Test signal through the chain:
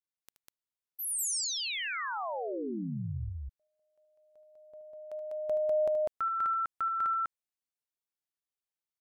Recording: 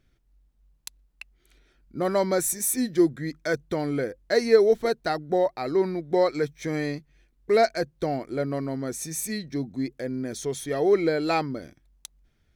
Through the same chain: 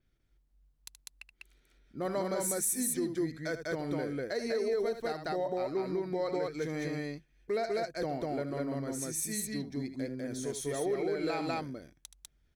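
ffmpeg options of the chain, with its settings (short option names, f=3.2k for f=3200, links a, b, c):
-af "aecho=1:1:75.8|198.3:0.282|0.891,alimiter=limit=-15.5dB:level=0:latency=1:release=114,adynamicequalizer=threshold=0.00562:dfrequency=8900:dqfactor=1.3:tfrequency=8900:tqfactor=1.3:attack=5:release=100:ratio=0.375:range=2.5:mode=boostabove:tftype=bell,volume=-8.5dB"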